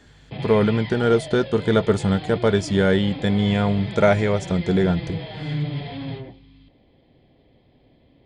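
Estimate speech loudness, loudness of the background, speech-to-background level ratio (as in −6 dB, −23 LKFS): −20.5 LKFS, −32.5 LKFS, 12.0 dB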